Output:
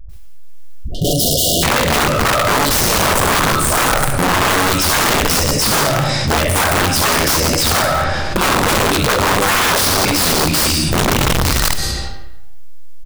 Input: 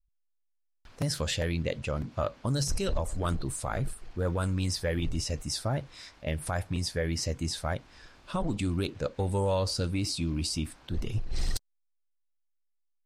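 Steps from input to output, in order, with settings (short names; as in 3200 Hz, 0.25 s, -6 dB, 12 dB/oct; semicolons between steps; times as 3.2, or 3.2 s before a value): early reflections 14 ms -4 dB, 67 ms -4 dB; AGC gain up to 11 dB; dispersion highs, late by 96 ms, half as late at 440 Hz; on a send at -5 dB: reverb RT60 0.95 s, pre-delay 80 ms; on the sum: wrapped overs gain 13 dB; dynamic EQ 1200 Hz, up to +5 dB, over -34 dBFS, Q 1.4; in parallel at -8 dB: wrapped overs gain 18.5 dB; on the sum: spectral repair 0.78–1.61, 750–2800 Hz before; fast leveller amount 70%; gain +1 dB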